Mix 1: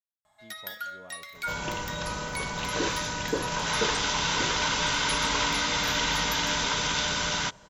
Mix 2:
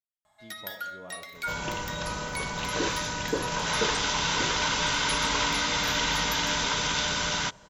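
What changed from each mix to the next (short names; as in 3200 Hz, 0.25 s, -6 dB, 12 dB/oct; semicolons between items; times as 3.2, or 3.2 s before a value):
speech: send on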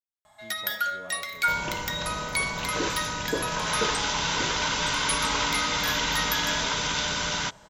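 first sound +9.0 dB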